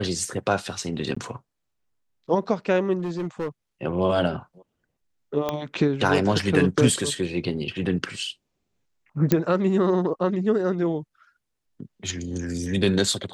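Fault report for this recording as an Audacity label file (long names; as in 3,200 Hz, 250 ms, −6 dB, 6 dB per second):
1.150000	1.170000	drop-out 15 ms
2.980000	3.480000	clipping −24 dBFS
5.490000	5.490000	click −12 dBFS
9.320000	9.320000	click −6 dBFS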